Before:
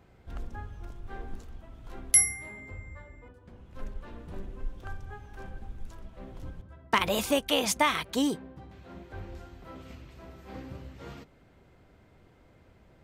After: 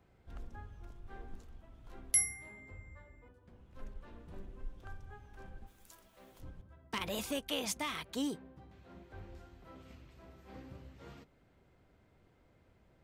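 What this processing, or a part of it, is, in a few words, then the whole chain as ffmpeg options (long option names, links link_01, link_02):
one-band saturation: -filter_complex "[0:a]acrossover=split=400|2300[link_01][link_02][link_03];[link_02]asoftclip=type=tanh:threshold=-30dB[link_04];[link_01][link_04][link_03]amix=inputs=3:normalize=0,asplit=3[link_05][link_06][link_07];[link_05]afade=type=out:start_time=5.66:duration=0.02[link_08];[link_06]aemphasis=mode=production:type=riaa,afade=type=in:start_time=5.66:duration=0.02,afade=type=out:start_time=6.39:duration=0.02[link_09];[link_07]afade=type=in:start_time=6.39:duration=0.02[link_10];[link_08][link_09][link_10]amix=inputs=3:normalize=0,volume=-8.5dB"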